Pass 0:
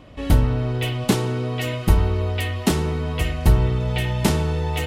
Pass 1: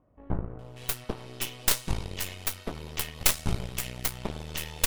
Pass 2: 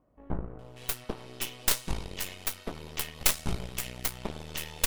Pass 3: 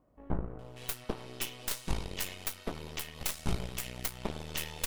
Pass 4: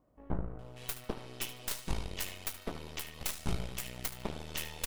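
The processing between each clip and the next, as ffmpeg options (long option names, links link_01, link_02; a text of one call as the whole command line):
ffmpeg -i in.wav -filter_complex "[0:a]acrossover=split=1200[link_01][link_02];[link_02]adelay=590[link_03];[link_01][link_03]amix=inputs=2:normalize=0,crystalizer=i=8:c=0,aeval=exprs='1.88*(cos(1*acos(clip(val(0)/1.88,-1,1)))-cos(1*PI/2))+0.473*(cos(3*acos(clip(val(0)/1.88,-1,1)))-cos(3*PI/2))+0.596*(cos(4*acos(clip(val(0)/1.88,-1,1)))-cos(4*PI/2))':channel_layout=same,volume=-9dB" out.wav
ffmpeg -i in.wav -af "equalizer=frequency=96:width_type=o:width=0.79:gain=-6.5,volume=-1.5dB" out.wav
ffmpeg -i in.wav -af "alimiter=limit=-14.5dB:level=0:latency=1:release=214" out.wav
ffmpeg -i in.wav -af "aecho=1:1:74|148|222:0.2|0.0459|0.0106,volume=-2dB" out.wav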